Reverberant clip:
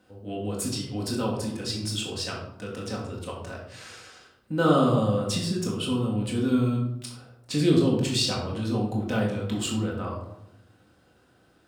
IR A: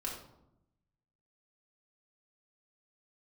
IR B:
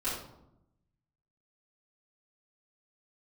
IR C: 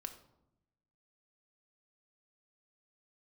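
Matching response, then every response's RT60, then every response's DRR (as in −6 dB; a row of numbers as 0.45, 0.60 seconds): A; 0.85, 0.85, 0.85 seconds; −3.0, −13.0, 6.5 decibels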